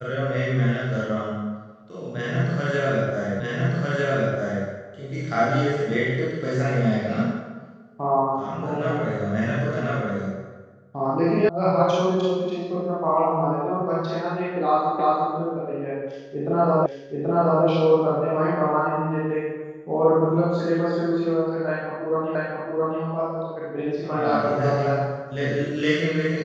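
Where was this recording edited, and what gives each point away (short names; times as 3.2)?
3.4 repeat of the last 1.25 s
11.49 sound cut off
14.99 repeat of the last 0.35 s
16.86 repeat of the last 0.78 s
22.35 repeat of the last 0.67 s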